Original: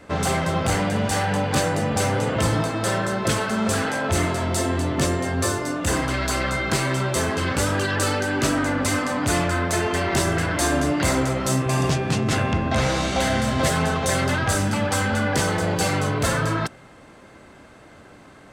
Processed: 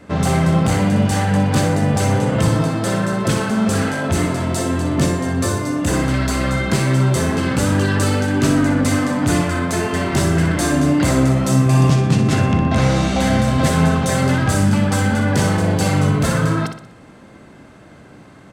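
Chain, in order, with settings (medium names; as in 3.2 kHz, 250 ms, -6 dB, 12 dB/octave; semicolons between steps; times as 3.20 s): peaking EQ 170 Hz +8 dB 1.8 oct; feedback delay 61 ms, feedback 44%, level -8 dB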